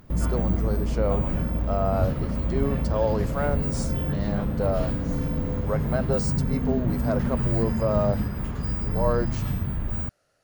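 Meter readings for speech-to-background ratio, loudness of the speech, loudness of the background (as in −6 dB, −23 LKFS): −3.0 dB, −30.0 LKFS, −27.0 LKFS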